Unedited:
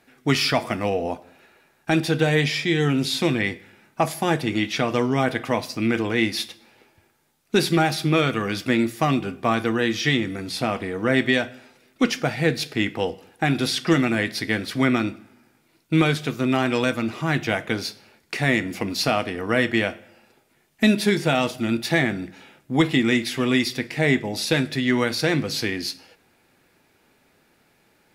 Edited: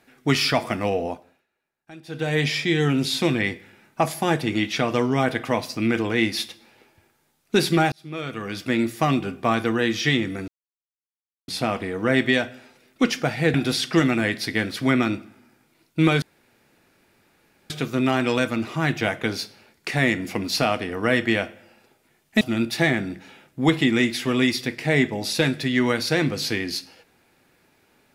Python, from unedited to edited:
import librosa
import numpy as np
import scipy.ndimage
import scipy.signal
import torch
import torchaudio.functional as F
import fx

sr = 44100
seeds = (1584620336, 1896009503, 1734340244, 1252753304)

y = fx.edit(x, sr, fx.fade_down_up(start_s=1.0, length_s=1.48, db=-22.5, fade_s=0.44),
    fx.fade_in_span(start_s=7.92, length_s=1.03),
    fx.insert_silence(at_s=10.48, length_s=1.0),
    fx.cut(start_s=12.54, length_s=0.94),
    fx.insert_room_tone(at_s=16.16, length_s=1.48),
    fx.cut(start_s=20.87, length_s=0.66), tone=tone)